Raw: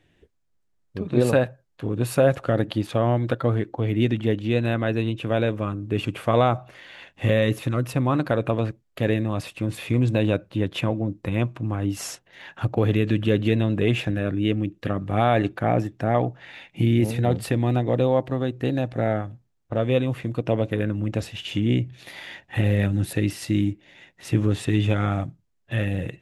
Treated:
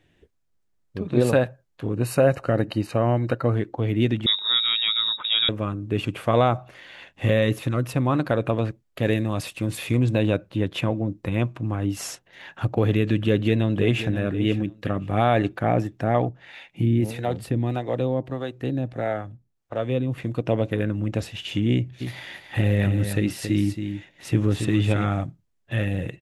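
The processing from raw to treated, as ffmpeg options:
-filter_complex "[0:a]asettb=1/sr,asplit=3[s0][s1][s2];[s0]atrim=end=1.934[s3];[s1]atrim=start=1.93:end=3.55,asetpts=PTS-STARTPTS,afade=t=in:d=0.004:c=qsin,afade=t=out:st=1.616:d=0.004:c=qsin,asuperstop=centerf=3400:order=20:qfactor=5.7[s4];[s2]atrim=start=3.546[s5];[s3][s4]acrossfade=d=0.004:c1=hsin:c2=qsin[s6];[s6][s5]acrossfade=d=0.004:c1=qsin:c2=hsin,asettb=1/sr,asplit=3[s7][s8][s9];[s7]atrim=end=4.264[s10];[s8]atrim=start=4.26:end=5.49,asetpts=PTS-STARTPTS,afade=t=in:d=0.004:c=qsin,afade=t=out:st=1.226:d=0.004:c=qsin,lowpass=f=3300:t=q:w=0.5098,lowpass=f=3300:t=q:w=0.6013,lowpass=f=3300:t=q:w=0.9,lowpass=f=3300:t=q:w=2.563,afreqshift=-3900[s11];[s9]atrim=start=5.486[s12];[s10][s11]acrossfade=d=0.004:c1=hsin:c2=qsin[s13];[s13][s12]acrossfade=d=0.004:c1=qsin:c2=hsin,asettb=1/sr,asplit=3[s14][s15][s16];[s14]atrim=end=9.054[s17];[s15]atrim=start=9.05:end=9.97,asetpts=PTS-STARTPTS,afade=t=in:d=0.004:c=qsin,afade=t=out:st=0.916:d=0.004:c=qsin,highshelf=f=4000:g=7[s18];[s16]atrim=start=9.966[s19];[s17][s18]acrossfade=d=0.004:c1=hsin:c2=qsin[s20];[s20][s19]acrossfade=d=0.004:c1=qsin:c2=hsin,asplit=2[s21][s22];[s22]afade=t=in:st=13.22:d=0.01,afade=t=out:st=14.15:d=0.01,aecho=0:1:530|1060:0.251189|0.0376783[s23];[s21][s23]amix=inputs=2:normalize=0,asettb=1/sr,asplit=3[s24][s25][s26];[s24]atrim=end=16.294[s27];[s25]atrim=start=16.29:end=20.18,asetpts=PTS-STARTPTS,afade=t=in:d=0.004:c=qsin,afade=t=out:st=3.886:d=0.004:c=qsin,acrossover=split=420[s28][s29];[s28]aeval=exprs='val(0)*(1-0.7/2+0.7/2*cos(2*PI*1.6*n/s))':c=same[s30];[s29]aeval=exprs='val(0)*(1-0.7/2-0.7/2*cos(2*PI*1.6*n/s))':c=same[s31];[s30][s31]amix=inputs=2:normalize=0[s32];[s26]atrim=start=20.176[s33];[s27][s32]acrossfade=d=0.004:c1=hsin:c2=qsin[s34];[s34][s33]acrossfade=d=0.004:c1=qsin:c2=hsin,asplit=3[s35][s36][s37];[s35]afade=t=out:st=22:d=0.02[s38];[s36]aecho=1:1:275:0.398,afade=t=in:st=22:d=0.02,afade=t=out:st=25.03:d=0.02[s39];[s37]afade=t=in:st=25.03:d=0.02[s40];[s38][s39][s40]amix=inputs=3:normalize=0"

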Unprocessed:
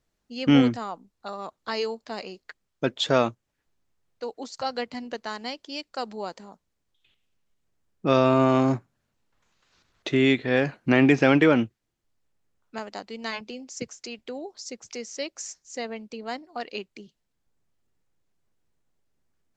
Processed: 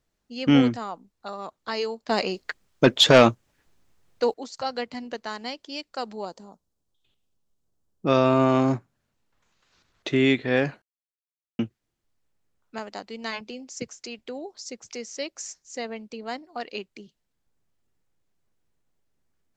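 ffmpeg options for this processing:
-filter_complex "[0:a]asettb=1/sr,asplit=3[s0][s1][s2];[s0]atrim=end=2.094[s3];[s1]atrim=start=2.09:end=4.34,asetpts=PTS-STARTPTS,afade=t=in:d=0.004:c=qsin,afade=t=out:st=2.246:d=0.004:c=qsin,aeval=exprs='0.447*sin(PI/2*2.24*val(0)/0.447)':c=same[s4];[s2]atrim=start=4.336[s5];[s3][s4]acrossfade=d=0.004:c1=hsin:c2=qsin[s6];[s6][s5]acrossfade=d=0.004:c1=qsin:c2=hsin,asettb=1/sr,asplit=3[s7][s8][s9];[s7]atrim=end=6.254[s10];[s8]atrim=start=6.25:end=8.07,asetpts=PTS-STARTPTS,afade=t=in:d=0.004:c=qsin,afade=t=out:st=1.816:d=0.004:c=qsin,equalizer=f=2100:t=o:w=1.2:g=-12.5[s11];[s9]atrim=start=8.066[s12];[s10][s11]acrossfade=d=0.004:c1=hsin:c2=qsin[s13];[s13][s12]acrossfade=d=0.004:c1=qsin:c2=hsin,asplit=3[s14][s15][s16];[s14]atrim=end=10.82,asetpts=PTS-STARTPTS,afade=t=out:st=10.816:d=0.004:c=hsin[s17];[s15]atrim=start=10.82:end=11.59,asetpts=PTS-STARTPTS,volume=0[s18];[s16]atrim=start=11.59,asetpts=PTS-STARTPTS,afade=t=in:d=0.004:c=hsin[s19];[s17][s18][s19]concat=n=3:v=0:a=1"

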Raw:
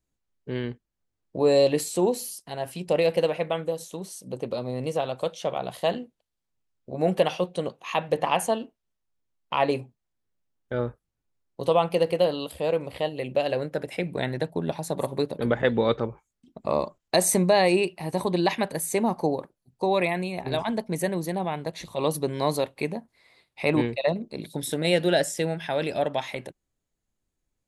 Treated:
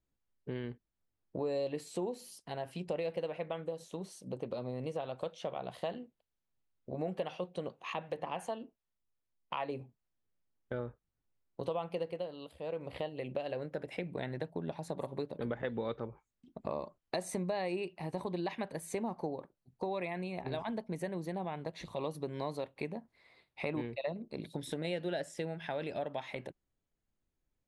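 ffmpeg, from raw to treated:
-filter_complex "[0:a]asettb=1/sr,asplit=3[s0][s1][s2];[s0]atrim=end=7.934[s3];[s1]atrim=start=7.93:end=9.81,asetpts=PTS-STARTPTS,afade=t=in:d=0.004:c=qsin,afade=t=out:st=1.876:d=0.004:c=qsin,acrossover=split=580[s4][s5];[s4]aeval=exprs='val(0)*(1-0.5/2+0.5/2*cos(2*PI*2.7*n/s))':c=same[s6];[s5]aeval=exprs='val(0)*(1-0.5/2-0.5/2*cos(2*PI*2.7*n/s))':c=same[s7];[s6][s7]amix=inputs=2:normalize=0[s8];[s2]atrim=start=9.806[s9];[s3][s8]acrossfade=d=0.004:c1=hsin:c2=qsin[s10];[s10][s9]acrossfade=d=0.004:c1=qsin:c2=hsin,asplit=3[s11][s12][s13];[s11]atrim=end=12.28,asetpts=PTS-STARTPTS,afade=t=out:st=12.02:d=0.26:silence=0.316228[s14];[s12]atrim=start=12.28:end=12.65,asetpts=PTS-STARTPTS,volume=0.316[s15];[s13]atrim=start=12.65,asetpts=PTS-STARTPTS,afade=t=in:d=0.26:silence=0.316228[s16];[s14][s15][s16]concat=n=3:v=0:a=1,lowpass=f=10000:w=0.5412,lowpass=f=10000:w=1.3066,equalizer=f=7800:w=0.68:g=-9,acompressor=threshold=0.0224:ratio=3,volume=0.668"

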